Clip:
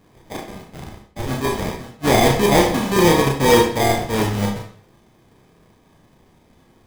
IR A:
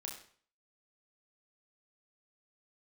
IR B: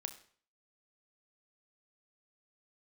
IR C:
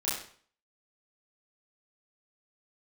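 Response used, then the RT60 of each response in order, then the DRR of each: A; 0.50, 0.50, 0.50 s; 0.0, 8.5, -9.0 dB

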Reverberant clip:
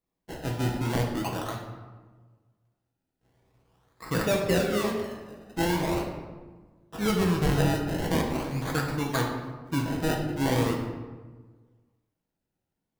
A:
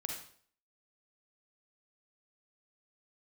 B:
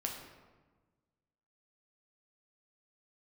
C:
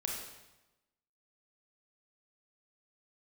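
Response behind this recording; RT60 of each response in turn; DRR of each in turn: B; 0.55, 1.3, 1.0 s; 0.5, 0.0, -1.0 dB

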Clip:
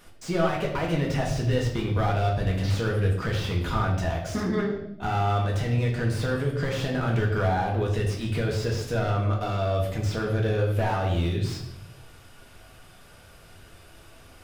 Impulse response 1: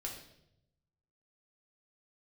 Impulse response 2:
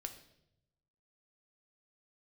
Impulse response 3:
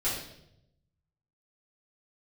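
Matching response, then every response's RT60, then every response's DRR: 1; 0.80, 0.80, 0.80 s; -1.5, 6.0, -11.0 dB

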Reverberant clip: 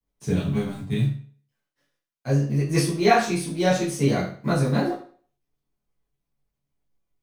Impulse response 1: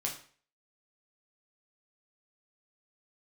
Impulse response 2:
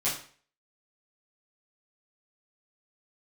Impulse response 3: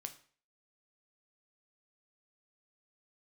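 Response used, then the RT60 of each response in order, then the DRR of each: 2; 0.45, 0.45, 0.45 s; -1.5, -10.5, 6.5 dB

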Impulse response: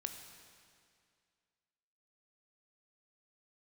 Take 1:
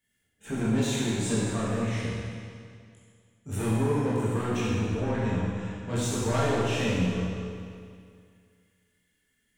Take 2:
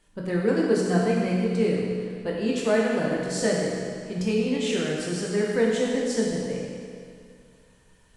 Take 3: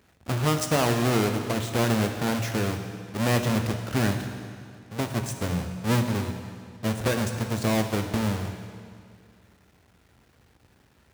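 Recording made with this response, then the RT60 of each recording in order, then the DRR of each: 3; 2.2, 2.2, 2.2 s; -8.5, -3.5, 5.5 dB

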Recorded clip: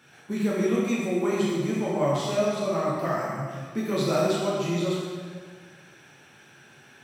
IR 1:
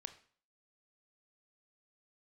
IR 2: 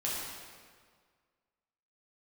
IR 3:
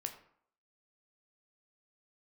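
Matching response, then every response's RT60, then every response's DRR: 2; 0.50, 1.8, 0.65 s; 9.5, -7.0, 5.0 dB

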